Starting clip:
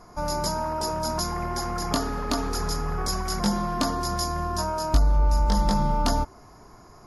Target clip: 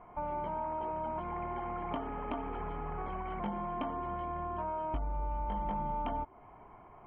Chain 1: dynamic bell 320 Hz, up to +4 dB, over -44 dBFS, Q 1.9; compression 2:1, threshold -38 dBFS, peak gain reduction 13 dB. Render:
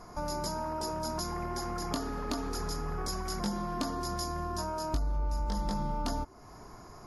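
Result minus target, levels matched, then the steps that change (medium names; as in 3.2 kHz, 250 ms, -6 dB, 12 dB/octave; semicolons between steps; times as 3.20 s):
4 kHz band +15.0 dB
add after dynamic bell: rippled Chebyshev low-pass 3.2 kHz, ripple 9 dB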